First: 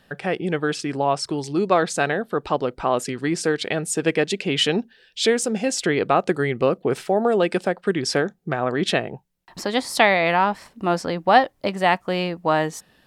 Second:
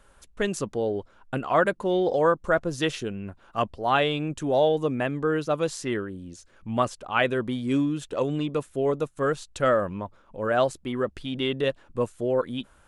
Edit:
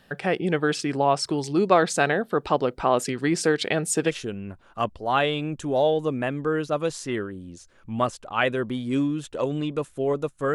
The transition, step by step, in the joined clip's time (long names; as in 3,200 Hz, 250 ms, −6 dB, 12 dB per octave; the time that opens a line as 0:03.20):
first
0:04.10: continue with second from 0:02.88, crossfade 0.14 s